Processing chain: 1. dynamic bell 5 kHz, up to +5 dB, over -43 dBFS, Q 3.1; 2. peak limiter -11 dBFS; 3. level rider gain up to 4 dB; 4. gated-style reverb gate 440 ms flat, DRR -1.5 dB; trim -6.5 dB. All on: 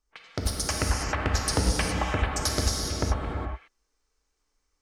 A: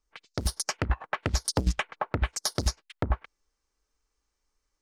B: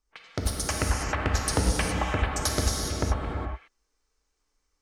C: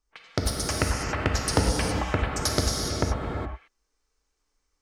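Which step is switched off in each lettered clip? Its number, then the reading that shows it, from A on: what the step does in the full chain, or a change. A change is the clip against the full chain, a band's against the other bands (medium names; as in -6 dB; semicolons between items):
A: 4, momentary loudness spread change -4 LU; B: 1, 4 kHz band -2.5 dB; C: 2, crest factor change +2.5 dB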